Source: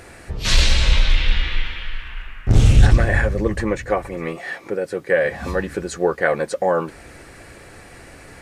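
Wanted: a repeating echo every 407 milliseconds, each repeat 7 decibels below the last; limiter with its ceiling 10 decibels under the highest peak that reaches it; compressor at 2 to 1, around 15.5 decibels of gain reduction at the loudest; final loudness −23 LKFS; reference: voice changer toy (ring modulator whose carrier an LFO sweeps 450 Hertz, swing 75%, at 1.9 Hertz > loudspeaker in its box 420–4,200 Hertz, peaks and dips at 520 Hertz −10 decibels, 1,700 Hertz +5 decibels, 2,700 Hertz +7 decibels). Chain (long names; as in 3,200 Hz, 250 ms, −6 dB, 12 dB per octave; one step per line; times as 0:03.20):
downward compressor 2 to 1, threshold −36 dBFS
brickwall limiter −25 dBFS
repeating echo 407 ms, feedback 45%, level −7 dB
ring modulator whose carrier an LFO sweeps 450 Hz, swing 75%, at 1.9 Hz
loudspeaker in its box 420–4,200 Hz, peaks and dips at 520 Hz −10 dB, 1,700 Hz +5 dB, 2,700 Hz +7 dB
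level +15 dB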